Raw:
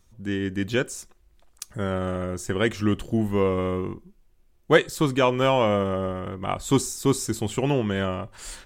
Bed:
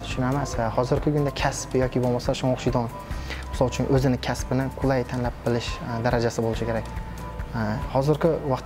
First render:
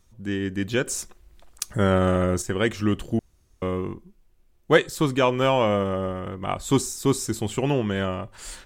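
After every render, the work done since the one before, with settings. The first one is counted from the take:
0:00.87–0:02.42: clip gain +7 dB
0:03.19–0:03.62: fill with room tone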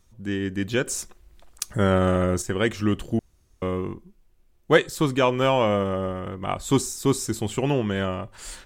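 no processing that can be heard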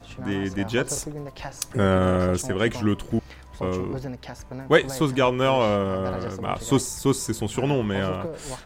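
mix in bed −12 dB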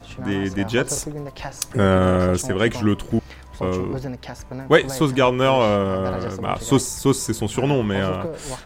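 level +3.5 dB
brickwall limiter −1 dBFS, peak gain reduction 2 dB

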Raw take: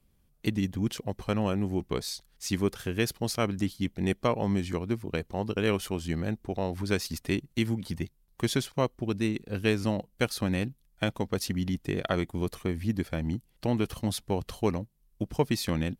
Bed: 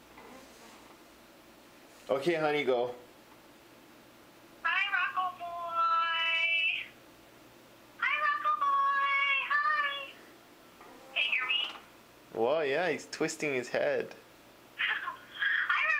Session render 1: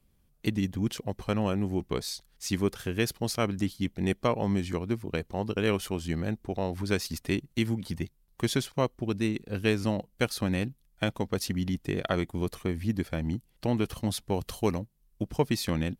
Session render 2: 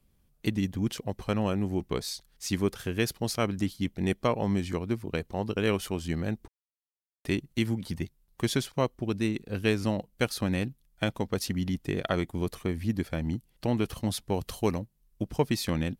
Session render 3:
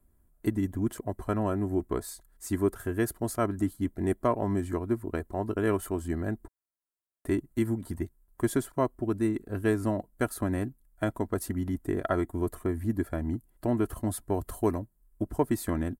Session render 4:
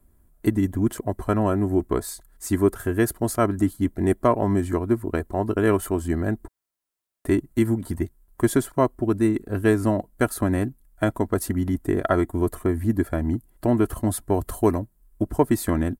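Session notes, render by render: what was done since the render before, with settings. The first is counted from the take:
0:14.34–0:14.80: high-shelf EQ 5,600 Hz +7.5 dB
0:06.48–0:07.25: silence
flat-topped bell 3,700 Hz −15.5 dB; comb filter 3 ms, depth 55%
level +7 dB

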